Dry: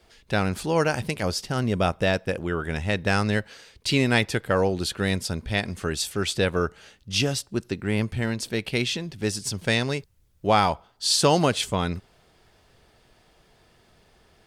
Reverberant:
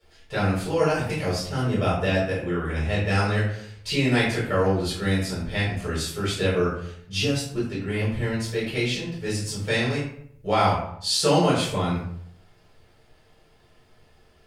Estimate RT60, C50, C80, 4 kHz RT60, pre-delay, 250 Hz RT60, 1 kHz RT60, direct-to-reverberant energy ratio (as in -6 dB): 0.65 s, 3.0 dB, 6.0 dB, 0.40 s, 4 ms, 0.75 s, 0.60 s, -9.5 dB